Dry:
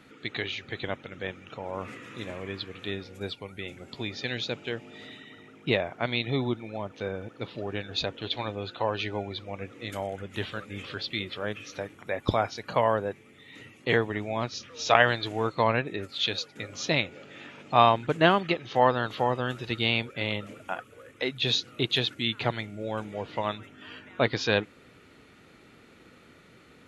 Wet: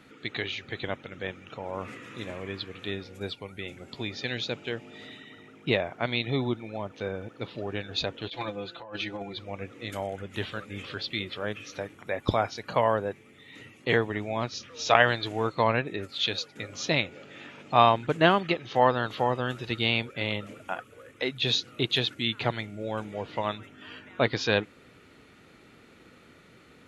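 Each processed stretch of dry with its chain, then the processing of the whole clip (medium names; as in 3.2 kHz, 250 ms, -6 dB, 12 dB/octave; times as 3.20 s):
8.28–9.37 s: gate -31 dBFS, range -9 dB + comb 5.9 ms, depth 95% + compressor with a negative ratio -36 dBFS
whole clip: none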